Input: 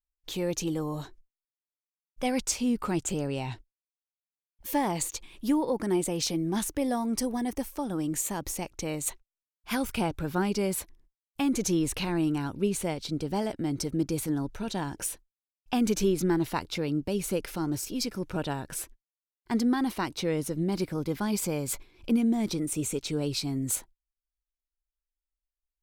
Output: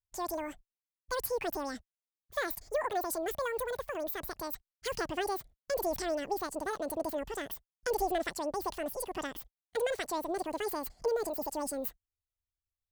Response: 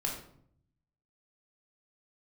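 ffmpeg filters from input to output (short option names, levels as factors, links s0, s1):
-af "asetrate=88200,aresample=44100,volume=0.531"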